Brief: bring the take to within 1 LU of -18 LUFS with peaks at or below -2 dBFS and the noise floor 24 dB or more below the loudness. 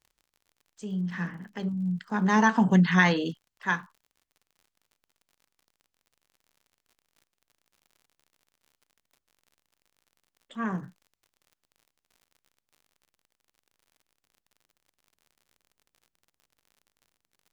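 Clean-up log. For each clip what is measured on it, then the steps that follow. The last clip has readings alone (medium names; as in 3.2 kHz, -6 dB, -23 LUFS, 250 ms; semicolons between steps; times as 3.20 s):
tick rate 58 per s; loudness -26.0 LUFS; peak level -7.5 dBFS; loudness target -18.0 LUFS
-> de-click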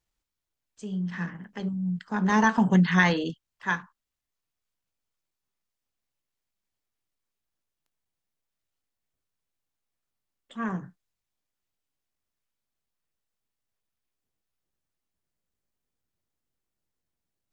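tick rate 0.17 per s; loudness -26.0 LUFS; peak level -7.5 dBFS; loudness target -18.0 LUFS
-> trim +8 dB; peak limiter -2 dBFS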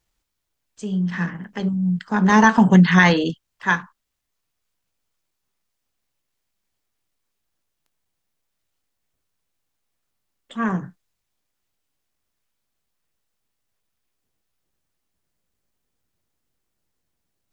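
loudness -18.5 LUFS; peak level -2.0 dBFS; noise floor -78 dBFS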